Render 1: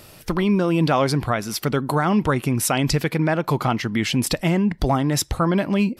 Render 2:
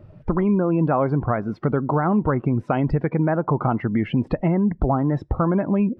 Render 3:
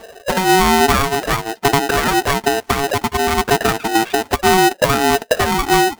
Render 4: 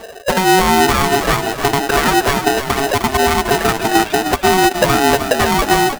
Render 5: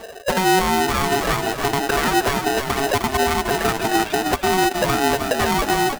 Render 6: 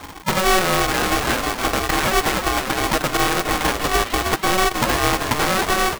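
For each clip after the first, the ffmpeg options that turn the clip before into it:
ffmpeg -i in.wav -af "lowpass=1300,afftdn=noise_reduction=17:noise_floor=-38,acompressor=threshold=-32dB:ratio=2,volume=8.5dB" out.wav
ffmpeg -i in.wav -af "flanger=delay=0.3:depth=6.3:regen=21:speed=0.58:shape=sinusoidal,aeval=exprs='val(0)*sgn(sin(2*PI*560*n/s))':channel_layout=same,volume=7.5dB" out.wav
ffmpeg -i in.wav -filter_complex "[0:a]alimiter=limit=-9.5dB:level=0:latency=1:release=402,asplit=2[link_01][link_02];[link_02]asplit=5[link_03][link_04][link_05][link_06][link_07];[link_03]adelay=307,afreqshift=-31,volume=-8dB[link_08];[link_04]adelay=614,afreqshift=-62,volume=-14.9dB[link_09];[link_05]adelay=921,afreqshift=-93,volume=-21.9dB[link_10];[link_06]adelay=1228,afreqshift=-124,volume=-28.8dB[link_11];[link_07]adelay=1535,afreqshift=-155,volume=-35.7dB[link_12];[link_08][link_09][link_10][link_11][link_12]amix=inputs=5:normalize=0[link_13];[link_01][link_13]amix=inputs=2:normalize=0,volume=4.5dB" out.wav
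ffmpeg -i in.wav -af "alimiter=limit=-7dB:level=0:latency=1:release=102,volume=-3dB" out.wav
ffmpeg -i in.wav -af "aeval=exprs='val(0)*sgn(sin(2*PI*380*n/s))':channel_layout=same" out.wav

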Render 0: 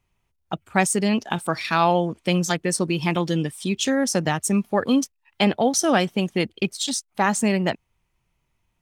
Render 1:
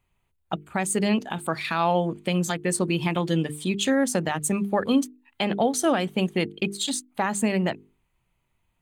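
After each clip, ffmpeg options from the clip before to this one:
ffmpeg -i in.wav -af "equalizer=frequency=5500:width=4.8:gain=-14.5,bandreject=frequency=50:width_type=h:width=6,bandreject=frequency=100:width_type=h:width=6,bandreject=frequency=150:width_type=h:width=6,bandreject=frequency=200:width_type=h:width=6,bandreject=frequency=250:width_type=h:width=6,bandreject=frequency=300:width_type=h:width=6,bandreject=frequency=350:width_type=h:width=6,bandreject=frequency=400:width_type=h:width=6,bandreject=frequency=450:width_type=h:width=6,alimiter=limit=-12dB:level=0:latency=1:release=173" out.wav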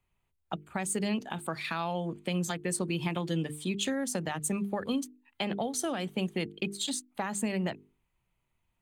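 ffmpeg -i in.wav -filter_complex "[0:a]acrossover=split=170|3000[link_01][link_02][link_03];[link_02]acompressor=threshold=-24dB:ratio=6[link_04];[link_01][link_04][link_03]amix=inputs=3:normalize=0,volume=-5.5dB" out.wav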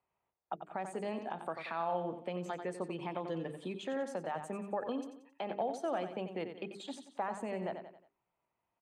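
ffmpeg -i in.wav -af "aecho=1:1:90|180|270|360:0.299|0.119|0.0478|0.0191,alimiter=level_in=0.5dB:limit=-24dB:level=0:latency=1:release=176,volume=-0.5dB,bandpass=frequency=710:width_type=q:width=1.2:csg=0,volume=3.5dB" out.wav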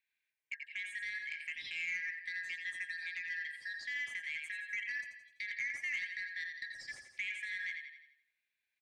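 ffmpeg -i in.wav -filter_complex "[0:a]afftfilt=real='real(if(lt(b,272),68*(eq(floor(b/68),0)*3+eq(floor(b/68),1)*0+eq(floor(b/68),2)*1+eq(floor(b/68),3)*2)+mod(b,68),b),0)':imag='imag(if(lt(b,272),68*(eq(floor(b/68),0)*3+eq(floor(b/68),1)*0+eq(floor(b/68),2)*1+eq(floor(b/68),3)*2)+mod(b,68),b),0)':win_size=2048:overlap=0.75,asplit=2[link_01][link_02];[link_02]aecho=0:1:83|166|249|332|415:0.316|0.155|0.0759|0.0372|0.0182[link_03];[link_01][link_03]amix=inputs=2:normalize=0,aeval=exprs='(tanh(20*val(0)+0.05)-tanh(0.05))/20':channel_layout=same,volume=-2.5dB" out.wav

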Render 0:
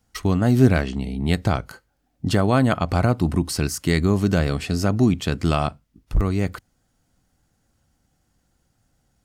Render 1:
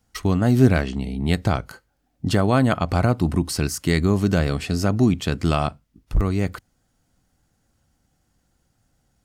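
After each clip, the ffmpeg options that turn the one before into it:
ffmpeg -i in.wav -af anull out.wav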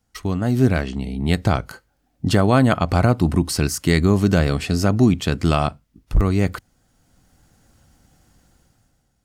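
ffmpeg -i in.wav -af "dynaudnorm=framelen=110:gausssize=13:maxgain=14dB,volume=-3dB" out.wav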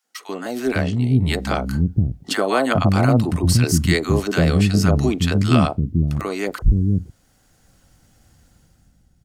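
ffmpeg -i in.wav -filter_complex "[0:a]acrossover=split=290|900[link_01][link_02][link_03];[link_02]adelay=40[link_04];[link_01]adelay=510[link_05];[link_05][link_04][link_03]amix=inputs=3:normalize=0,volume=2dB" out.wav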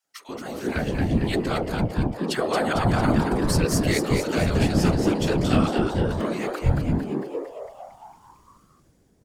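ffmpeg -i in.wav -filter_complex "[0:a]afftfilt=real='hypot(re,im)*cos(2*PI*random(0))':imag='hypot(re,im)*sin(2*PI*random(1))':win_size=512:overlap=0.75,asplit=9[link_01][link_02][link_03][link_04][link_05][link_06][link_07][link_08][link_09];[link_02]adelay=226,afreqshift=130,volume=-5dB[link_10];[link_03]adelay=452,afreqshift=260,volume=-9.9dB[link_11];[link_04]adelay=678,afreqshift=390,volume=-14.8dB[link_12];[link_05]adelay=904,afreqshift=520,volume=-19.6dB[link_13];[link_06]adelay=1130,afreqshift=650,volume=-24.5dB[link_14];[link_07]adelay=1356,afreqshift=780,volume=-29.4dB[link_15];[link_08]adelay=1582,afreqshift=910,volume=-34.3dB[link_16];[link_09]adelay=1808,afreqshift=1040,volume=-39.2dB[link_17];[link_01][link_10][link_11][link_12][link_13][link_14][link_15][link_16][link_17]amix=inputs=9:normalize=0" out.wav

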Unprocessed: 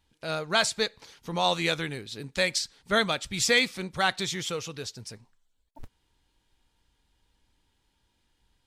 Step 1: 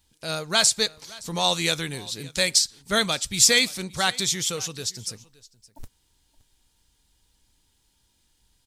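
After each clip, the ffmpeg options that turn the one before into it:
ffmpeg -i in.wav -af "bass=frequency=250:gain=3,treble=frequency=4000:gain=13,aecho=1:1:569:0.0794" out.wav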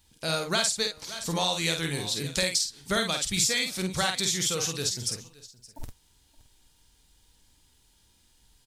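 ffmpeg -i in.wav -filter_complex "[0:a]acompressor=threshold=-27dB:ratio=5,asplit=2[link_01][link_02];[link_02]adelay=49,volume=-5dB[link_03];[link_01][link_03]amix=inputs=2:normalize=0,volume=2.5dB" out.wav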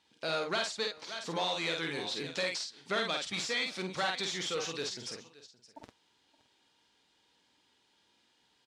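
ffmpeg -i in.wav -af "asoftclip=type=tanh:threshold=-24.5dB,highpass=290,lowpass=3700" out.wav

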